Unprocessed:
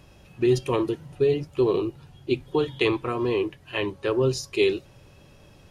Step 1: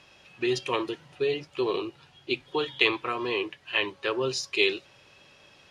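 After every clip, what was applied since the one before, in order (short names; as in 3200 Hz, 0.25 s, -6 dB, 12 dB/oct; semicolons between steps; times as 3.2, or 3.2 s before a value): LPF 3400 Hz 12 dB/oct; tilt +4.5 dB/oct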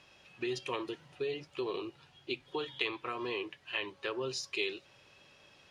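compressor 2:1, threshold -30 dBFS, peak gain reduction 7.5 dB; gain -5 dB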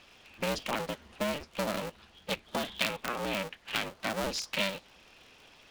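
cycle switcher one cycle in 2, inverted; gain +3.5 dB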